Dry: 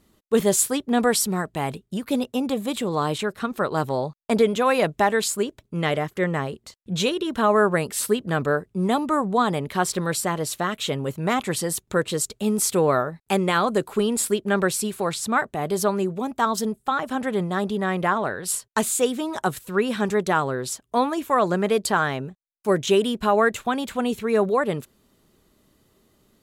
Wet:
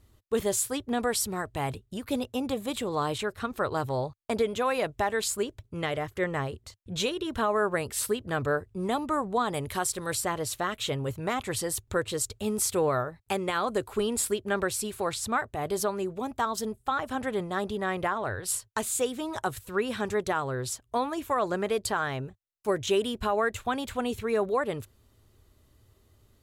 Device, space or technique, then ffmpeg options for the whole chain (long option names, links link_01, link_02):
car stereo with a boomy subwoofer: -filter_complex "[0:a]asettb=1/sr,asplit=3[link_01][link_02][link_03];[link_01]atrim=end=9.544[link_04];[link_02]atrim=start=9.54:end=10.15,asetpts=PTS-STARTPTS,afade=type=in:duration=0.004:curve=qsin,afade=type=out:start_time=0.606:duration=0.004:curve=qsin,equalizer=frequency=10000:width_type=o:width=1.4:gain=10.5[link_05];[link_03]atrim=start=10.146[link_06];[link_04][link_05]acrossfade=duration=0.004:curve1=hsin:curve2=qsin[link_07];[link_07][link_06]acrossfade=duration=0.004:curve1=qsin:curve2=hsin,lowshelf=frequency=130:width_type=q:width=3:gain=8.5,alimiter=limit=-12.5dB:level=0:latency=1:release=275,volume=-4dB"